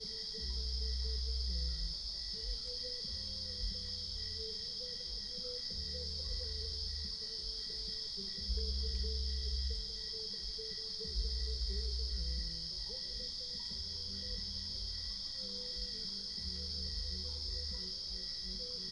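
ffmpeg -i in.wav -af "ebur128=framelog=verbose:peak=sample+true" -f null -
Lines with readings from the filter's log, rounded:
Integrated loudness:
  I:         -38.9 LUFS
  Threshold: -48.8 LUFS
Loudness range:
  LRA:         1.1 LU
  Threshold: -58.9 LUFS
  LRA low:   -39.4 LUFS
  LRA high:  -38.3 LUFS
Sample peak:
  Peak:      -25.2 dBFS
True peak:
  Peak:      -25.1 dBFS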